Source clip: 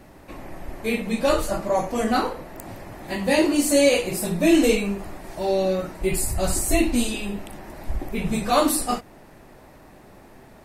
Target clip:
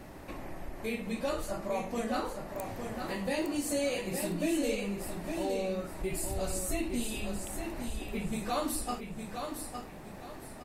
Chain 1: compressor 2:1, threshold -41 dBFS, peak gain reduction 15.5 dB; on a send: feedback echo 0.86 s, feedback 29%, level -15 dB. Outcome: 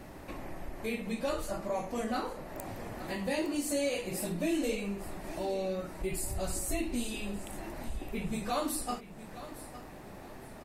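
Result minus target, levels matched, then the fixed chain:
echo-to-direct -8.5 dB
compressor 2:1, threshold -41 dBFS, peak gain reduction 15.5 dB; on a send: feedback echo 0.86 s, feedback 29%, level -6.5 dB

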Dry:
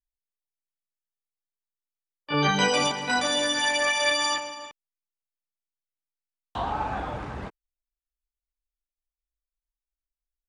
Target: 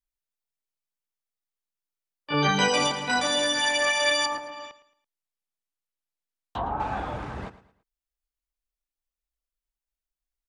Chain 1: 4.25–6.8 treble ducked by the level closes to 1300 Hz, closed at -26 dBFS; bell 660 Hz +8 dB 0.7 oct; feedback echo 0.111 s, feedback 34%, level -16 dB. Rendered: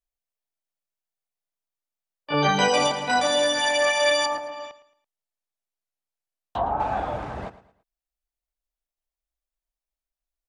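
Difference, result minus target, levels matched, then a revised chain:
500 Hz band +3.5 dB
4.25–6.8 treble ducked by the level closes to 1300 Hz, closed at -26 dBFS; feedback echo 0.111 s, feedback 34%, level -16 dB

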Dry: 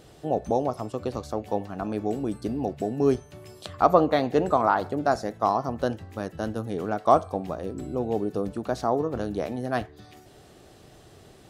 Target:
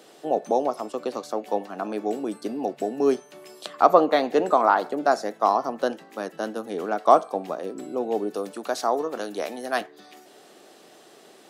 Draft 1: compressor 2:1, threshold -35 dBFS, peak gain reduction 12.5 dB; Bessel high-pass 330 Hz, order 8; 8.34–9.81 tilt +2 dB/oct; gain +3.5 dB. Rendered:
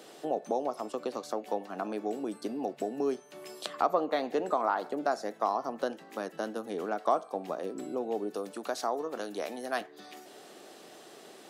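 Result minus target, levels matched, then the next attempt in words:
compressor: peak gain reduction +12.5 dB
Bessel high-pass 330 Hz, order 8; 8.34–9.81 tilt +2 dB/oct; gain +3.5 dB

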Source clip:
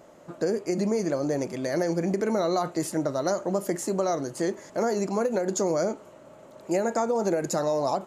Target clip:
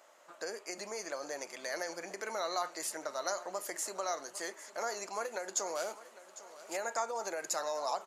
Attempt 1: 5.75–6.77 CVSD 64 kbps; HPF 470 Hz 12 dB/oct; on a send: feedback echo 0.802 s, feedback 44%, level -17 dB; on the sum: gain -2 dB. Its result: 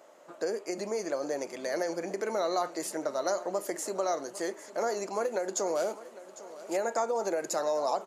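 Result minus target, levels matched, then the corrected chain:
500 Hz band +3.0 dB
5.75–6.77 CVSD 64 kbps; HPF 1000 Hz 12 dB/oct; on a send: feedback echo 0.802 s, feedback 44%, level -17 dB; on the sum: gain -2 dB

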